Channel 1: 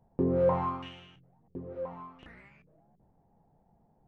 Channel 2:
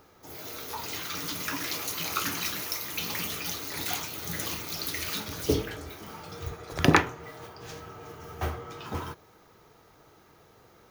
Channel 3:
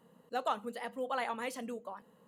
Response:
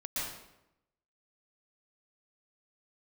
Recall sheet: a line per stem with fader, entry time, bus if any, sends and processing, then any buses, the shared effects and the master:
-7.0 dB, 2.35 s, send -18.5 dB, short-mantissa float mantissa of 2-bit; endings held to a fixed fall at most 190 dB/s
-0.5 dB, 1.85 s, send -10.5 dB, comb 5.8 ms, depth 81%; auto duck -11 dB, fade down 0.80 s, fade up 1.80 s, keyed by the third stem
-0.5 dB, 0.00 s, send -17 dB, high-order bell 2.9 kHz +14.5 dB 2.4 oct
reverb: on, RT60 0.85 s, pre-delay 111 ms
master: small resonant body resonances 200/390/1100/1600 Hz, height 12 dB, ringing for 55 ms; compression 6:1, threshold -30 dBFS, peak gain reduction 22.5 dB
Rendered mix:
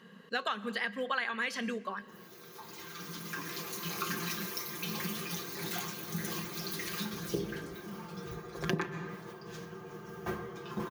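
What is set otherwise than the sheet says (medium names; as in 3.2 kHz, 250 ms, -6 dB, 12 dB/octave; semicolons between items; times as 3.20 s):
stem 1: muted; stem 2 -0.5 dB -> -9.0 dB; reverb return -7.5 dB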